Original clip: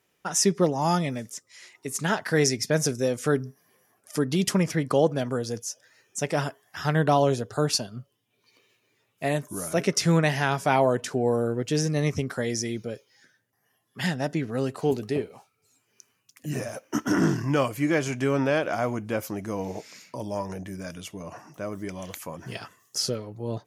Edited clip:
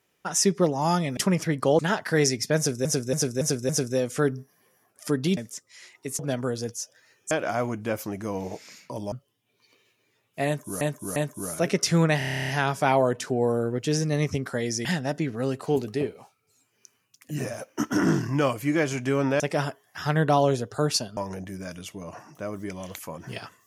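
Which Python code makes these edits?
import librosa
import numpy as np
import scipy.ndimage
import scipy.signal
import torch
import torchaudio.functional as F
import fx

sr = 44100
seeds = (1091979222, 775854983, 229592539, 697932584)

y = fx.edit(x, sr, fx.swap(start_s=1.17, length_s=0.82, other_s=4.45, other_length_s=0.62),
    fx.repeat(start_s=2.77, length_s=0.28, count=5),
    fx.swap(start_s=6.19, length_s=1.77, other_s=18.55, other_length_s=1.81),
    fx.repeat(start_s=9.3, length_s=0.35, count=3),
    fx.stutter(start_s=10.32, slice_s=0.03, count=11),
    fx.cut(start_s=12.69, length_s=1.31), tone=tone)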